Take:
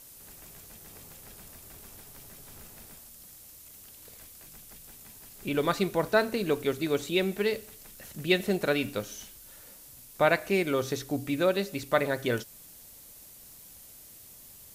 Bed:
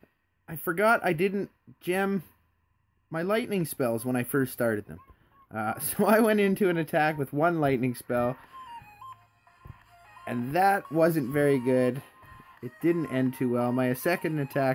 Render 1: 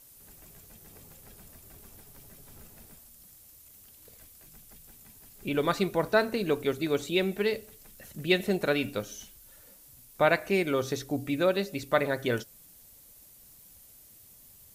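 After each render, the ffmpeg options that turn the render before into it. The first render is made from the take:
-af "afftdn=nr=6:nf=-51"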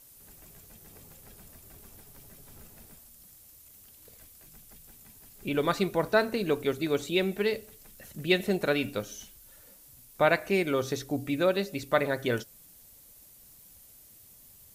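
-af anull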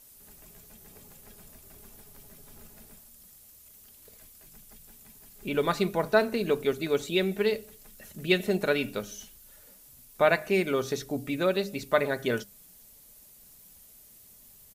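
-af "bandreject=f=50:t=h:w=6,bandreject=f=100:t=h:w=6,bandreject=f=150:t=h:w=6,bandreject=f=200:t=h:w=6,aecho=1:1:4.8:0.32"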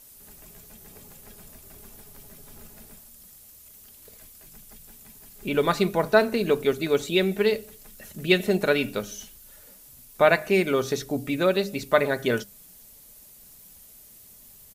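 -af "volume=4dB"

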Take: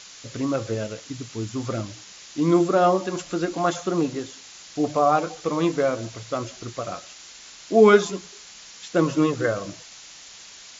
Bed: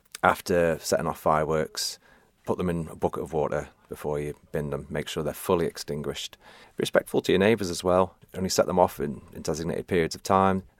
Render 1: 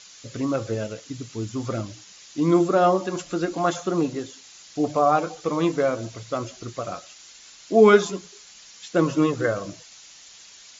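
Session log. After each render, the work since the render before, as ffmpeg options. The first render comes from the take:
-af "afftdn=nr=6:nf=-45"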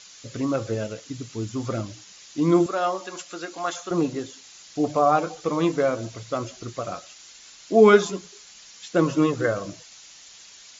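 -filter_complex "[0:a]asettb=1/sr,asplit=3[a][b][c];[a]atrim=end=2.664[d];[b]atrim=start=2.66:end=3.91,asetpts=PTS-STARTPTS,afade=t=in:d=0.004:c=qsin,afade=t=out:st=1.246:d=0.004:c=qsin,highpass=f=1.2k:p=1[e];[c]atrim=start=3.906[f];[d][e]acrossfade=d=0.004:c1=hsin:c2=qsin[g];[g][f]acrossfade=d=0.004:c1=qsin:c2=hsin"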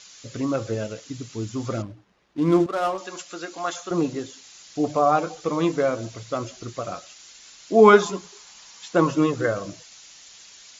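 -filter_complex "[0:a]asettb=1/sr,asplit=3[a][b][c];[a]atrim=end=1.824[d];[b]atrim=start=1.82:end=2.98,asetpts=PTS-STARTPTS,afade=t=in:d=0.004:c=qsin,afade=t=out:st=1.156:d=0.004:c=qsin,adynamicsmooth=sensitivity=5.5:basefreq=800[e];[c]atrim=start=2.976[f];[d][e]acrossfade=d=0.004:c1=hsin:c2=qsin[g];[g][f]acrossfade=d=0.004:c1=qsin:c2=hsin,asettb=1/sr,asplit=3[h][i][j];[h]atrim=end=7.794[k];[i]atrim=start=7.79:end=9.11,asetpts=PTS-STARTPTS,afade=t=in:d=0.004:c=qsin,afade=t=out:st=1.316:d=0.004:c=qsin,equalizer=f=950:t=o:w=0.77:g=8.5[l];[j]atrim=start=9.106[m];[k][l]acrossfade=d=0.004:c1=hsin:c2=qsin[n];[n][m]acrossfade=d=0.004:c1=qsin:c2=hsin"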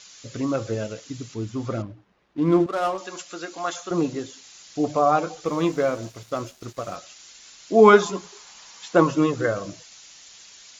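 -filter_complex "[0:a]asettb=1/sr,asplit=3[a][b][c];[a]atrim=end=1.344[d];[b]atrim=start=1.34:end=2.67,asetpts=PTS-STARTPTS,afade=t=in:d=0.004:c=qsin,afade=t=out:st=1.326:d=0.004:c=qsin,lowpass=f=3.2k:p=1[e];[c]atrim=start=2.666[f];[d][e]acrossfade=d=0.004:c1=hsin:c2=qsin[g];[g][f]acrossfade=d=0.004:c1=qsin:c2=hsin,asettb=1/sr,asplit=3[h][i][j];[h]atrim=end=5.454[k];[i]atrim=start=5.45:end=6.96,asetpts=PTS-STARTPTS,afade=t=in:d=0.004:c=qsin,afade=t=out:st=1.506:d=0.004:c=qsin,aeval=exprs='sgn(val(0))*max(abs(val(0))-0.00531,0)':c=same[l];[j]atrim=start=6.956[m];[k][l]acrossfade=d=0.004:c1=hsin:c2=qsin[n];[n][m]acrossfade=d=0.004:c1=qsin:c2=hsin,asettb=1/sr,asplit=3[o][p][q];[o]atrim=end=8.154[r];[p]atrim=start=8.15:end=9.03,asetpts=PTS-STARTPTS,afade=t=in:d=0.004:c=qsin,afade=t=out:st=0.876:d=0.004:c=qsin,equalizer=f=800:t=o:w=2.7:g=3.5[s];[q]atrim=start=9.026[t];[r][s]acrossfade=d=0.004:c1=hsin:c2=qsin[u];[u][t]acrossfade=d=0.004:c1=qsin:c2=hsin"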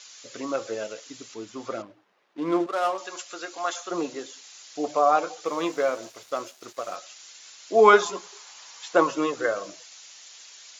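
-af "highpass=440"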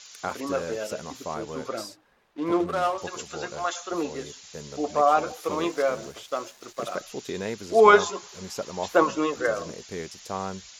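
-filter_complex "[1:a]volume=-11dB[a];[0:a][a]amix=inputs=2:normalize=0"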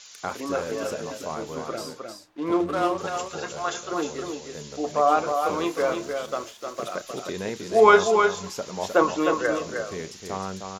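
-filter_complex "[0:a]asplit=2[a][b];[b]adelay=32,volume=-14dB[c];[a][c]amix=inputs=2:normalize=0,aecho=1:1:309:0.531"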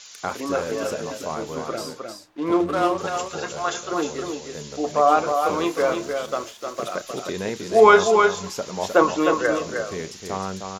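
-af "volume=3dB,alimiter=limit=-2dB:level=0:latency=1"

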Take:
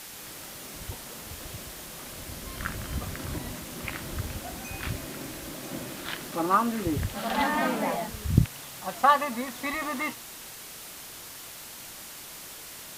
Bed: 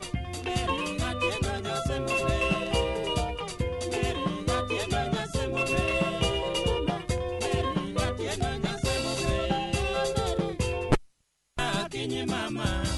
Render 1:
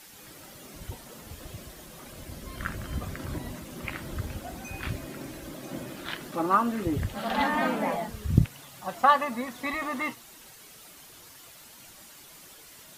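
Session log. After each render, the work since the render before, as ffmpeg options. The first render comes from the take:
-af "afftdn=nr=9:nf=-43"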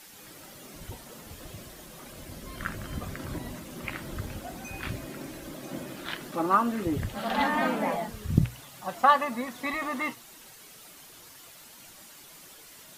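-af "equalizer=f=71:w=1.7:g=-4,bandreject=f=60:t=h:w=6,bandreject=f=120:t=h:w=6"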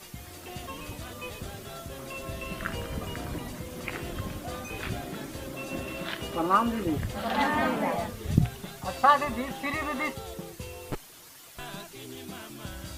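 -filter_complex "[1:a]volume=-12dB[a];[0:a][a]amix=inputs=2:normalize=0"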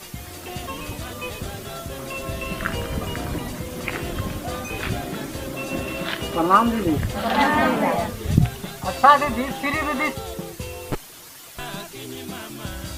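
-af "volume=7.5dB,alimiter=limit=-1dB:level=0:latency=1"

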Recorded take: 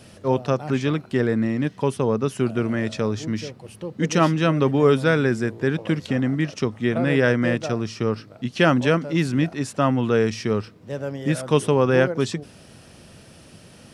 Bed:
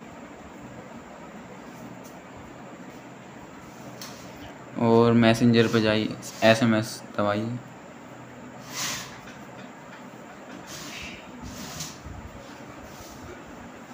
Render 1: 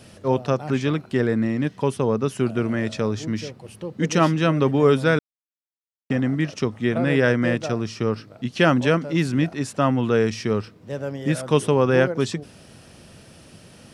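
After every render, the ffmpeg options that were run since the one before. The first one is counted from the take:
-filter_complex "[0:a]asplit=3[a][b][c];[a]atrim=end=5.19,asetpts=PTS-STARTPTS,afade=t=out:st=5.186:d=0.004:c=hsin[d];[b]atrim=start=5.19:end=6.1,asetpts=PTS-STARTPTS,volume=0[e];[c]atrim=start=6.1,asetpts=PTS-STARTPTS,afade=t=in:d=0.004:c=hsin[f];[d][e][f]concat=n=3:v=0:a=1"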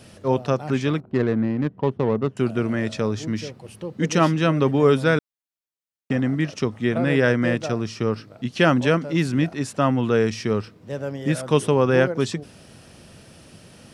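-filter_complex "[0:a]asettb=1/sr,asplit=3[a][b][c];[a]atrim=end=1.004[d];[b]atrim=start=1:end=2.37,asetpts=PTS-STARTPTS,afade=t=in:d=0.004:c=qsin,afade=t=out:st=1.366:d=0.004:c=qsin,adynamicsmooth=sensitivity=1:basefreq=560[e];[c]atrim=start=2.366[f];[d][e]acrossfade=d=0.004:c1=hsin:c2=qsin[g];[g][f]acrossfade=d=0.004:c1=qsin:c2=hsin"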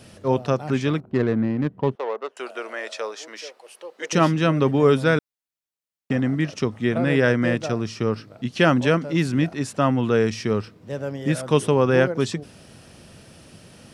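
-filter_complex "[0:a]asettb=1/sr,asplit=3[a][b][c];[a]atrim=end=1.954[d];[b]atrim=start=1.95:end=4.13,asetpts=PTS-STARTPTS,afade=t=in:d=0.004:c=qsin,afade=t=out:st=2.176:d=0.004:c=qsin,highpass=f=500:w=0.5412,highpass=f=500:w=1.3066[e];[c]atrim=start=4.126[f];[d][e]acrossfade=d=0.004:c1=hsin:c2=qsin[g];[g][f]acrossfade=d=0.004:c1=qsin:c2=hsin"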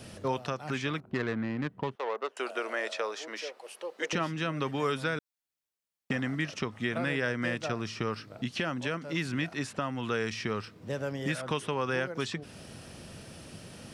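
-filter_complex "[0:a]acrossover=split=970|3800[a][b][c];[a]acompressor=threshold=-32dB:ratio=4[d];[b]acompressor=threshold=-31dB:ratio=4[e];[c]acompressor=threshold=-47dB:ratio=4[f];[d][e][f]amix=inputs=3:normalize=0,alimiter=limit=-18.5dB:level=0:latency=1:release=438"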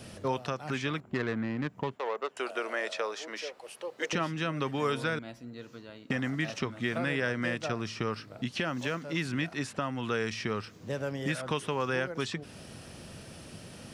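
-filter_complex "[1:a]volume=-25.5dB[a];[0:a][a]amix=inputs=2:normalize=0"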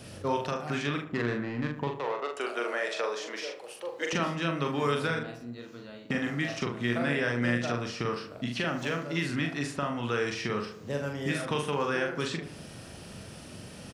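-filter_complex "[0:a]asplit=2[a][b];[b]adelay=42,volume=-4dB[c];[a][c]amix=inputs=2:normalize=0,asplit=2[d][e];[e]adelay=75,lowpass=f=1.6k:p=1,volume=-9dB,asplit=2[f][g];[g]adelay=75,lowpass=f=1.6k:p=1,volume=0.51,asplit=2[h][i];[i]adelay=75,lowpass=f=1.6k:p=1,volume=0.51,asplit=2[j][k];[k]adelay=75,lowpass=f=1.6k:p=1,volume=0.51,asplit=2[l][m];[m]adelay=75,lowpass=f=1.6k:p=1,volume=0.51,asplit=2[n][o];[o]adelay=75,lowpass=f=1.6k:p=1,volume=0.51[p];[d][f][h][j][l][n][p]amix=inputs=7:normalize=0"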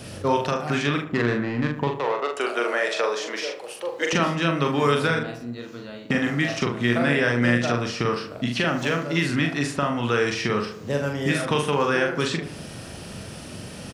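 -af "volume=7.5dB"

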